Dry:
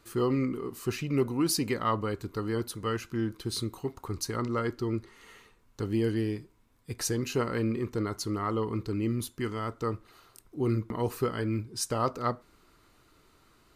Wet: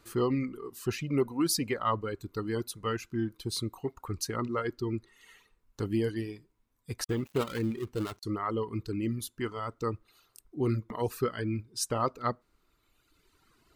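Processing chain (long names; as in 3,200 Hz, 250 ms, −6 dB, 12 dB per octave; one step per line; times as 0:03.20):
0:07.04–0:08.23: gap after every zero crossing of 0.21 ms
reverb reduction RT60 1.7 s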